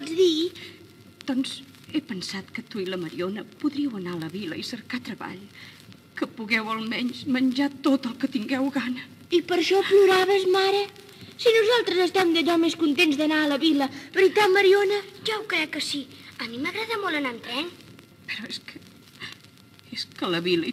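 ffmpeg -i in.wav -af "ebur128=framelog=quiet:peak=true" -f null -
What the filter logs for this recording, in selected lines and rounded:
Integrated loudness:
  I:         -24.1 LUFS
  Threshold: -34.9 LUFS
Loudness range:
  LRA:        10.8 LU
  Threshold: -44.6 LUFS
  LRA low:   -31.8 LUFS
  LRA high:  -21.0 LUFS
True peak:
  Peak:       -8.2 dBFS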